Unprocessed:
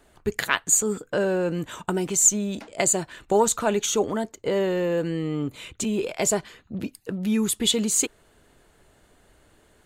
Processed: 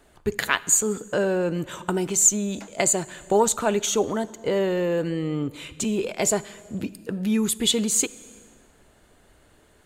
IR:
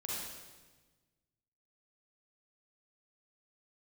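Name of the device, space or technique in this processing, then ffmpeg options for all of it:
compressed reverb return: -filter_complex "[0:a]asplit=2[s0][s1];[1:a]atrim=start_sample=2205[s2];[s1][s2]afir=irnorm=-1:irlink=0,acompressor=threshold=0.0501:ratio=4,volume=0.2[s3];[s0][s3]amix=inputs=2:normalize=0"

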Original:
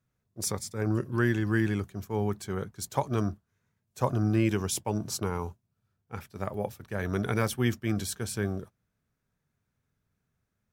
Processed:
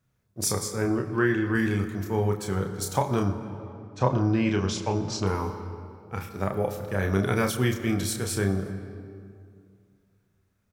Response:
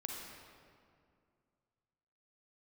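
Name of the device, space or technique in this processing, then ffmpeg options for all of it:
compressed reverb return: -filter_complex "[0:a]asettb=1/sr,asplit=3[s0][s1][s2];[s0]atrim=end=0.854[s3];[s1]atrim=start=0.85:end=1.55,asetpts=PTS-STARTPTS,afade=t=in:d=0.004:c=qsin,afade=t=out:st=0.696:d=0.004:c=qsin,bass=f=250:g=-5,treble=f=4000:g=-12[s4];[s2]atrim=start=1.546[s5];[s3][s4]acrossfade=d=0.004:c1=hsin:c2=qsin[s6];[s6][s5]acrossfade=d=0.004:c1=qsin:c2=hsin,asettb=1/sr,asplit=3[s7][s8][s9];[s7]atrim=end=3.254[s10];[s8]atrim=start=3.25:end=5.27,asetpts=PTS-STARTPTS,afade=t=in:d=0.004:c=qsin,afade=t=out:st=2.016:d=0.004:c=qsin,lowpass=f=5700:w=0.5412,lowpass=f=5700:w=1.3066[s11];[s9]atrim=start=5.266[s12];[s10][s11]acrossfade=d=0.004:c1=hsin:c2=qsin[s13];[s13][s12]acrossfade=d=0.004:c1=qsin:c2=hsin,asplit=2[s14][s15];[1:a]atrim=start_sample=2205[s16];[s15][s16]afir=irnorm=-1:irlink=0,acompressor=threshold=0.0316:ratio=6,volume=0.944[s17];[s14][s17]amix=inputs=2:normalize=0,asplit=2[s18][s19];[s19]adelay=31,volume=0.596[s20];[s18][s20]amix=inputs=2:normalize=0"

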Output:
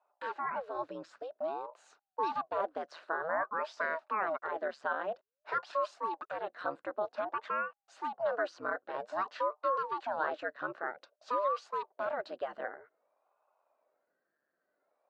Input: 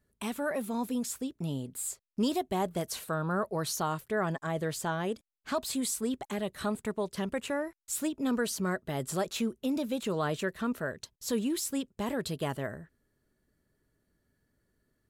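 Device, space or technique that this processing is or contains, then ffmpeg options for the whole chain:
voice changer toy: -af "aeval=exprs='val(0)*sin(2*PI*450*n/s+450*0.85/0.52*sin(2*PI*0.52*n/s))':c=same,highpass=500,equalizer=f=610:t=q:w=4:g=9,equalizer=f=1100:t=q:w=4:g=4,equalizer=f=1500:t=q:w=4:g=8,equalizer=f=2200:t=q:w=4:g=-6,equalizer=f=3300:t=q:w=4:g=-9,lowpass=f=3700:w=0.5412,lowpass=f=3700:w=1.3066,volume=0.841"

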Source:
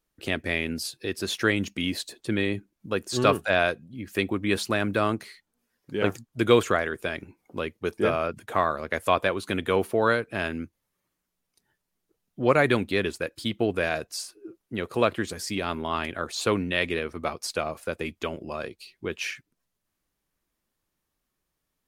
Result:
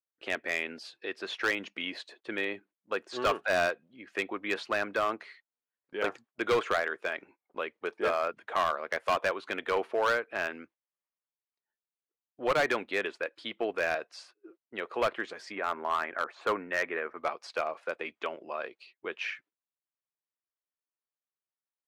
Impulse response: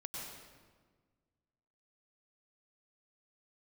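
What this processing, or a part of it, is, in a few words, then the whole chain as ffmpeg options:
walkie-talkie: -filter_complex "[0:a]asettb=1/sr,asplit=3[s0][s1][s2];[s0]atrim=end=15.524[s3];[s1]atrim=start=15.52:end=17.18,asetpts=PTS-STARTPTS,afade=t=in:d=0.004:c=qsin,afade=t=out:st=1.656:d=0.004:c=qsin,highshelf=f=2500:t=q:w=1.5:g=-12[s4];[s2]atrim=start=17.176[s5];[s3][s4]acrossfade=d=0.004:c1=hsin:c2=qsin[s6];[s6][s5]acrossfade=d=0.004:c1=qsin:c2=hsin,highpass=570,lowpass=2500,asoftclip=type=hard:threshold=0.0891,agate=range=0.126:threshold=0.00158:ratio=16:detection=peak"

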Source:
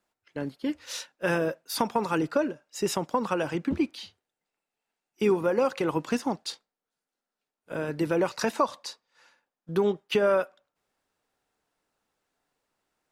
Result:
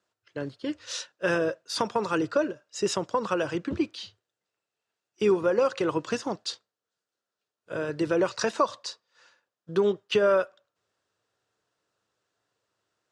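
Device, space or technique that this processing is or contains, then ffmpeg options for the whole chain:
car door speaker: -af "highpass=99,equalizer=f=110:t=q:w=4:g=9,equalizer=f=160:t=q:w=4:g=-6,equalizer=f=250:t=q:w=4:g=-10,equalizer=f=820:t=q:w=4:g=-8,equalizer=f=2200:t=q:w=4:g=-6,lowpass=f=7900:w=0.5412,lowpass=f=7900:w=1.3066,volume=1.33"

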